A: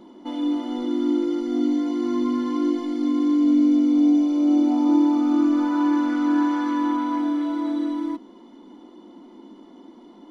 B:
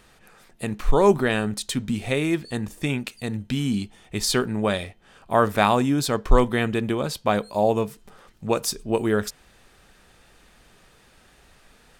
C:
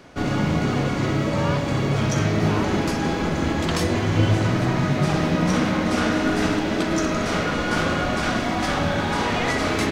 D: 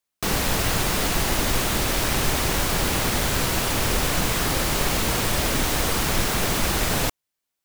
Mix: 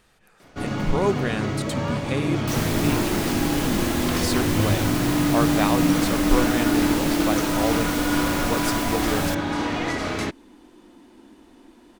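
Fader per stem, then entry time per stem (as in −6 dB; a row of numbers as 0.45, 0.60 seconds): −5.0, −5.5, −4.5, −6.0 decibels; 1.80, 0.00, 0.40, 2.25 seconds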